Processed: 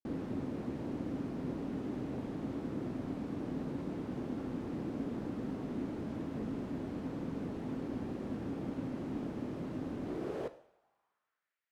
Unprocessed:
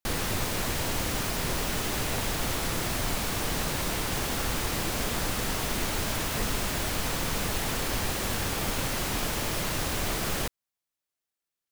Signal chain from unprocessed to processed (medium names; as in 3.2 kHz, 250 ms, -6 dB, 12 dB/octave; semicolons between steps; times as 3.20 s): two-slope reverb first 0.65 s, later 2.5 s, from -24 dB, DRR 11.5 dB; band-pass sweep 260 Hz -> 1.9 kHz, 10.01–11.59 s; trim +1.5 dB